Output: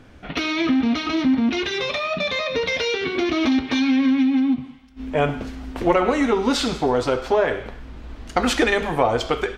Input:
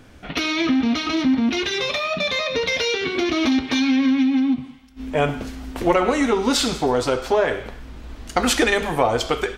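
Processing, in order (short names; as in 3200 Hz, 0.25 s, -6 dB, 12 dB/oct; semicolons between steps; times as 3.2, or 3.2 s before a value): high shelf 6400 Hz -11.5 dB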